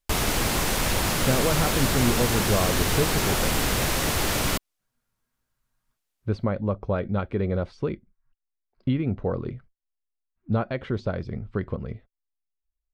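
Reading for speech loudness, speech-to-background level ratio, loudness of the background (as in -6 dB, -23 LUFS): -28.5 LUFS, -4.5 dB, -24.0 LUFS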